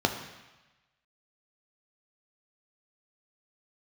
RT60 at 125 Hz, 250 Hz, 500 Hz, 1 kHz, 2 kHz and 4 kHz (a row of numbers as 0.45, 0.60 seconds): 1.2, 1.0, 1.0, 1.2, 1.2, 1.2 seconds